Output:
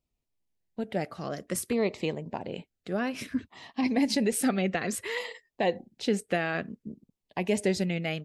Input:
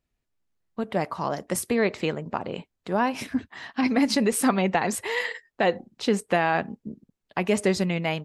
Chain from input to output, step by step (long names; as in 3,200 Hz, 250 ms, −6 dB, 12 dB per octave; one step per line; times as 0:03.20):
auto-filter notch saw down 0.58 Hz 750–1,700 Hz
level −3.5 dB